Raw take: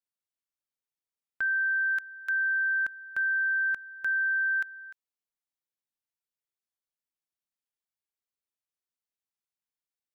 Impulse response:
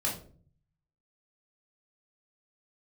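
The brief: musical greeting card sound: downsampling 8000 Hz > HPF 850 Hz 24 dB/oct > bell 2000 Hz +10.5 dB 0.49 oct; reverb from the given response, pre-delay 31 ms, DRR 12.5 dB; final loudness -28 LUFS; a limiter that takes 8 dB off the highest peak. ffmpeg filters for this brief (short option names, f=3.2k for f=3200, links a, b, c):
-filter_complex "[0:a]alimiter=level_in=8dB:limit=-24dB:level=0:latency=1,volume=-8dB,asplit=2[a][b];[1:a]atrim=start_sample=2205,adelay=31[c];[b][c]afir=irnorm=-1:irlink=0,volume=-18.5dB[d];[a][d]amix=inputs=2:normalize=0,aresample=8000,aresample=44100,highpass=f=850:w=0.5412,highpass=f=850:w=1.3066,equalizer=f=2k:t=o:w=0.49:g=10.5,volume=4dB"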